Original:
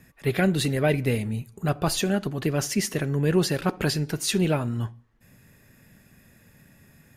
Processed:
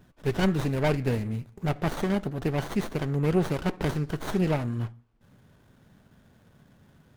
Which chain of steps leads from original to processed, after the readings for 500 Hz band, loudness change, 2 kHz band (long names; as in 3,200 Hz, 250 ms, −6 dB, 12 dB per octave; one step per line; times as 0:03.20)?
−2.5 dB, −3.0 dB, −4.5 dB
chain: hollow resonant body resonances 1,500/2,200 Hz, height 12 dB
windowed peak hold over 17 samples
level −2 dB